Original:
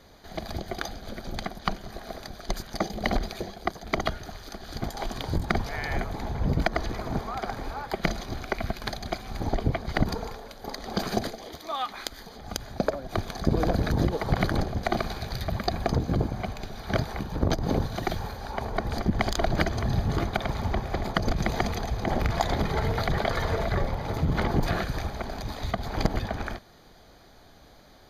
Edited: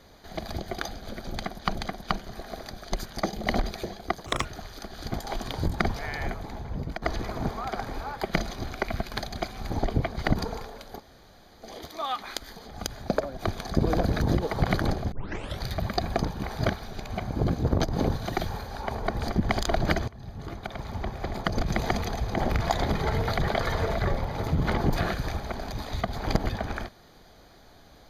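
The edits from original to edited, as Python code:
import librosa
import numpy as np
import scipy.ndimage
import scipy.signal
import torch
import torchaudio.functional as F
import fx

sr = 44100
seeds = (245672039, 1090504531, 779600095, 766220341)

y = fx.edit(x, sr, fx.repeat(start_s=1.32, length_s=0.43, count=2),
    fx.speed_span(start_s=3.83, length_s=0.32, speed=1.69),
    fx.fade_out_to(start_s=5.58, length_s=1.14, floor_db=-11.5),
    fx.room_tone_fill(start_s=10.68, length_s=0.66, crossfade_s=0.06),
    fx.tape_start(start_s=14.82, length_s=0.48),
    fx.reverse_span(start_s=15.95, length_s=1.43),
    fx.fade_in_from(start_s=19.78, length_s=1.74, floor_db=-22.5), tone=tone)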